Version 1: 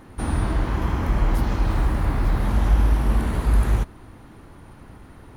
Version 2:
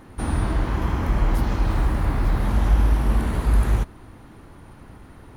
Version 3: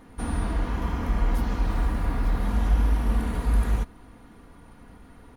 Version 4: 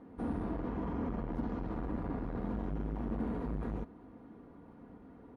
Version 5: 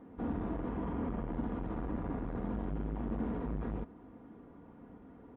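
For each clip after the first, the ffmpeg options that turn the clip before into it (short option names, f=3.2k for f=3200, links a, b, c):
-af anull
-af "aecho=1:1:4.2:0.45,volume=-5dB"
-af "asoftclip=type=tanh:threshold=-22dB,bandpass=f=330:t=q:w=0.77:csg=0"
-af "aresample=8000,aresample=44100"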